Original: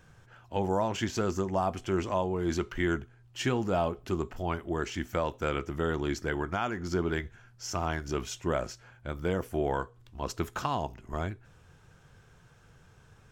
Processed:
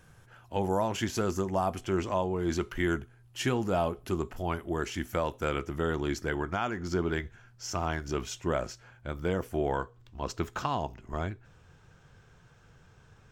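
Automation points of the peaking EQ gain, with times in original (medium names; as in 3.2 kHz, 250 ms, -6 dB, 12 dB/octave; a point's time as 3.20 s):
peaking EQ 11 kHz 0.43 oct
+12.5 dB
from 1.81 s +3 dB
from 2.61 s +12 dB
from 5.63 s +5.5 dB
from 6.35 s -2 dB
from 9.76 s -12.5 dB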